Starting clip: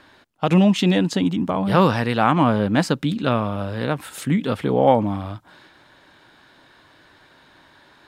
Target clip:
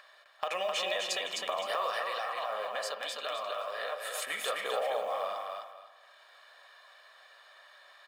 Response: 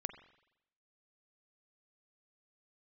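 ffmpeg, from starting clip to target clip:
-filter_complex "[0:a]agate=range=0.0251:threshold=0.00891:ratio=16:detection=peak,highpass=f=620:w=0.5412,highpass=f=620:w=1.3066,aecho=1:1:1.7:0.66,acompressor=mode=upward:threshold=0.00708:ratio=2.5,alimiter=limit=0.141:level=0:latency=1:release=29,acompressor=threshold=0.0158:ratio=4,asplit=3[s0][s1][s2];[s0]afade=t=out:st=1.94:d=0.02[s3];[s1]flanger=delay=3.5:depth=6.6:regen=-20:speed=1.8:shape=triangular,afade=t=in:st=1.94:d=0.02,afade=t=out:st=4.21:d=0.02[s4];[s2]afade=t=in:st=4.21:d=0.02[s5];[s3][s4][s5]amix=inputs=3:normalize=0,acrusher=bits=8:mode=log:mix=0:aa=0.000001,aecho=1:1:258|516|774|1032:0.668|0.167|0.0418|0.0104[s6];[1:a]atrim=start_sample=2205[s7];[s6][s7]afir=irnorm=-1:irlink=0,volume=1.78"

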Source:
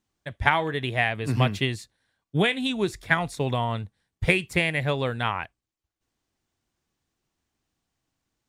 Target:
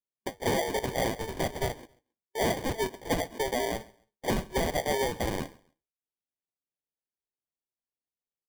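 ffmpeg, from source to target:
-filter_complex "[0:a]asettb=1/sr,asplit=3[s0][s1][s2];[s0]atrim=end=4.384[s3];[s1]atrim=start=4.38:end=5.04,asetpts=PTS-STARTPTS,afade=t=in:d=0.004:c=qsin,afade=t=out:st=0.656:d=0.004:c=qsin,lowshelf=f=490:g=11[s4];[s2]atrim=start=5.036[s5];[s3][s4]acrossfade=d=0.004:c1=hsin:c2=qsin[s6];[s6][s5]acrossfade=d=0.004:c1=qsin:c2=hsin,afftfilt=real='re*between(b*sr/4096,370,3800)':imag='im*between(b*sr/4096,370,3800)':win_size=4096:overlap=0.75,aemphasis=mode=production:type=75kf,agate=range=0.0447:threshold=0.00501:ratio=16:detection=peak,asplit=2[s7][s8];[s8]acompressor=threshold=0.0316:ratio=5,volume=1.26[s9];[s7][s9]amix=inputs=2:normalize=0,flanger=delay=4.9:depth=9.4:regen=73:speed=0.64:shape=sinusoidal,acrusher=samples=33:mix=1:aa=0.000001,asoftclip=type=tanh:threshold=0.0891,asplit=2[s10][s11];[s11]aecho=0:1:135|270:0.0668|0.0174[s12];[s10][s12]amix=inputs=2:normalize=0"

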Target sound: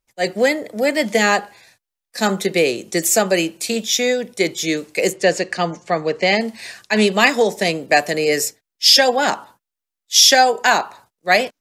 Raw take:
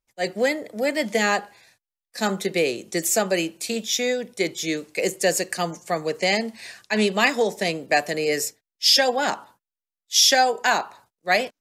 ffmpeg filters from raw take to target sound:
-filter_complex "[0:a]asettb=1/sr,asplit=3[s0][s1][s2];[s0]atrim=end=5.134[s3];[s1]atrim=start=5.13:end=6.41,asetpts=PTS-STARTPTS,afade=t=in:d=0.004:c=qsin,afade=t=out:st=1.276:d=0.004:c=qsin,lowpass=4300[s4];[s2]atrim=start=6.406[s5];[s3][s4]acrossfade=d=0.004:c1=hsin:c2=qsin[s6];[s6][s5]acrossfade=d=0.004:c1=qsin:c2=hsin,volume=1.88"

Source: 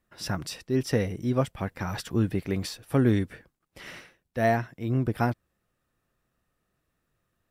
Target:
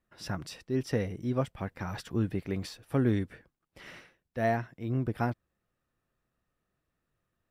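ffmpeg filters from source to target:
-af "highshelf=f=5200:g=-6,volume=0.596"

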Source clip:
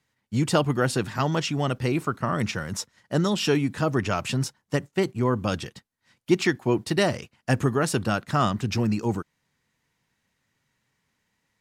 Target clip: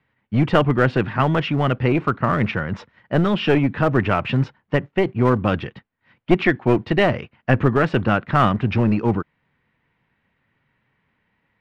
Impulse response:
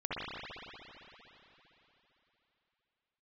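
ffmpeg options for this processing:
-filter_complex "[0:a]lowpass=f=2800:w=0.5412,lowpass=f=2800:w=1.3066,acrossover=split=1500[s0][s1];[s0]aeval=exprs='clip(val(0),-1,0.0596)':c=same[s2];[s2][s1]amix=inputs=2:normalize=0,volume=2.24"

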